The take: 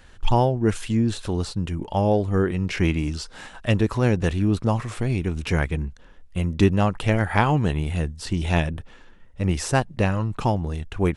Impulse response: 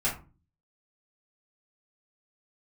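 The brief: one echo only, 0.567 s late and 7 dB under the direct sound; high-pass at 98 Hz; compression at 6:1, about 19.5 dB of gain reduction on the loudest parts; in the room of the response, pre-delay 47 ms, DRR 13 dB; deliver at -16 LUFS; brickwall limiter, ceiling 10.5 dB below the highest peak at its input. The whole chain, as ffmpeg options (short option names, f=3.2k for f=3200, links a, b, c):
-filter_complex "[0:a]highpass=98,acompressor=threshold=-35dB:ratio=6,alimiter=level_in=5.5dB:limit=-24dB:level=0:latency=1,volume=-5.5dB,aecho=1:1:567:0.447,asplit=2[a][b];[1:a]atrim=start_sample=2205,adelay=47[c];[b][c]afir=irnorm=-1:irlink=0,volume=-21.5dB[d];[a][d]amix=inputs=2:normalize=0,volume=24dB"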